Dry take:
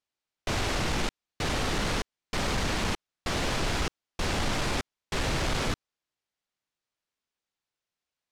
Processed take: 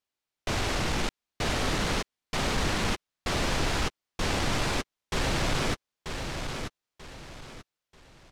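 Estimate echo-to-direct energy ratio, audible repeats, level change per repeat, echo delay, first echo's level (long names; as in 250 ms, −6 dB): −6.0 dB, 3, −10.0 dB, 937 ms, −6.5 dB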